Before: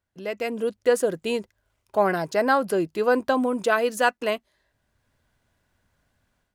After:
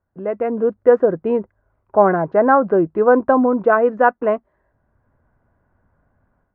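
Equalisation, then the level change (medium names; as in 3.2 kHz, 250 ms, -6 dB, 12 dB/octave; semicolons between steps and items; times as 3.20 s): low-pass 1.4 kHz 24 dB/octave; +8.0 dB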